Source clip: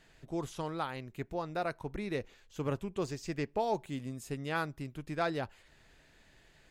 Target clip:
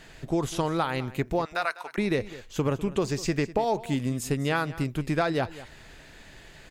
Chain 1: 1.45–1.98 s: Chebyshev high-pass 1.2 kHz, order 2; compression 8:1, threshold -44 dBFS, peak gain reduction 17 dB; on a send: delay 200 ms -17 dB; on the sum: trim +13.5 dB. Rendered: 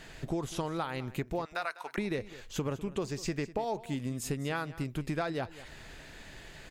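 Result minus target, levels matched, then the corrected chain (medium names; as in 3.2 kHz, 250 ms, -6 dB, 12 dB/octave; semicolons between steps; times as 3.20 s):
compression: peak gain reduction +8 dB
1.45–1.98 s: Chebyshev high-pass 1.2 kHz, order 2; compression 8:1, threshold -35 dBFS, peak gain reduction 9 dB; on a send: delay 200 ms -17 dB; on the sum: trim +13.5 dB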